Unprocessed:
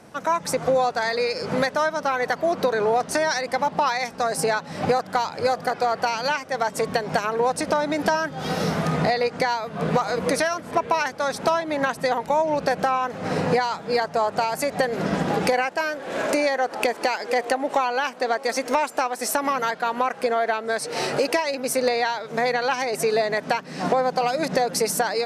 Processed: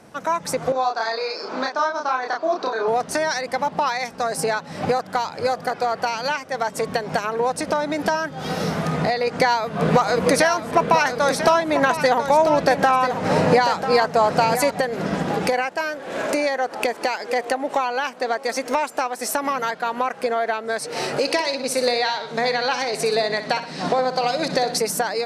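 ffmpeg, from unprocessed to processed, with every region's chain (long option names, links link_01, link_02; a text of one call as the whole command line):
ffmpeg -i in.wav -filter_complex "[0:a]asettb=1/sr,asplit=3[link_01][link_02][link_03];[link_01]atrim=end=0.724[link_04];[link_02]atrim=start=0.72:end=2.88,asetpts=PTS-STARTPTS,afade=type=in:duration=0.004:curve=qsin,afade=type=out:start_time=2.156:duration=0.004:curve=qsin,highpass=frequency=300:width=0.5412,highpass=frequency=300:width=1.3066,equalizer=frequency=510:width_type=q:width=4:gain=-9,equalizer=frequency=1100:width_type=q:width=4:gain=3,equalizer=frequency=2000:width_type=q:width=4:gain=-9,equalizer=frequency=3000:width_type=q:width=4:gain=-6,lowpass=frequency=5800:width=0.5412,lowpass=frequency=5800:width=1.3066,asplit=2[link_05][link_06];[link_06]adelay=31,volume=-2.5dB[link_07];[link_05][link_07]amix=inputs=2:normalize=0,atrim=end_sample=95256[link_08];[link_03]atrim=start=2.876[link_09];[link_04][link_08]acrossfade=duration=0.004:curve1=hsin:curve2=qsin[link_10];[link_10][link_09]acrossfade=duration=0.004:curve1=qsin:curve2=hsin,asettb=1/sr,asplit=3[link_11][link_12][link_13];[link_11]atrim=end=9.274[link_14];[link_12]atrim=start=9.27:end=14.71,asetpts=PTS-STARTPTS,afade=type=in:duration=0.004:curve=qsin,afade=type=out:start_time=5.436:duration=0.004:curve=qsin,acontrast=25,aecho=1:1:993:0.355,atrim=end_sample=239904[link_15];[link_13]atrim=start=14.706[link_16];[link_14][link_15]acrossfade=duration=0.004:curve1=hsin:curve2=qsin[link_17];[link_17][link_16]acrossfade=duration=0.004:curve1=qsin:curve2=hsin,asettb=1/sr,asplit=3[link_18][link_19][link_20];[link_18]atrim=end=21.214[link_21];[link_19]atrim=start=21.21:end=24.78,asetpts=PTS-STARTPTS,afade=type=in:duration=0.004:curve=qsin,afade=type=out:start_time=3.566:duration=0.004:curve=qsin,lowpass=frequency=11000:width=0.5412,lowpass=frequency=11000:width=1.3066,equalizer=frequency=4000:width_type=o:width=0.66:gain=7.5,aecho=1:1:62|124|186|248|310:0.282|0.135|0.0649|0.0312|0.015,atrim=end_sample=157437[link_22];[link_20]atrim=start=24.776[link_23];[link_21][link_22]acrossfade=duration=0.004:curve1=hsin:curve2=qsin[link_24];[link_24][link_23]acrossfade=duration=0.004:curve1=qsin:curve2=hsin" out.wav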